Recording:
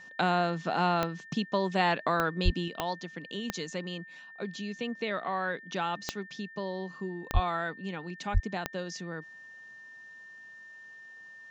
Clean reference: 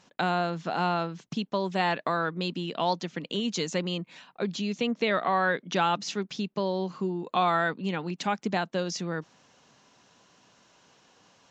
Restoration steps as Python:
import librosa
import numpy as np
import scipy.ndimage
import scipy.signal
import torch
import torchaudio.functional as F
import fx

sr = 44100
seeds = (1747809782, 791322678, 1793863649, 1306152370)

y = fx.fix_declick_ar(x, sr, threshold=10.0)
y = fx.notch(y, sr, hz=1800.0, q=30.0)
y = fx.highpass(y, sr, hz=140.0, slope=24, at=(2.44, 2.56), fade=0.02)
y = fx.highpass(y, sr, hz=140.0, slope=24, at=(7.33, 7.45), fade=0.02)
y = fx.highpass(y, sr, hz=140.0, slope=24, at=(8.33, 8.45), fade=0.02)
y = fx.fix_level(y, sr, at_s=2.68, step_db=7.0)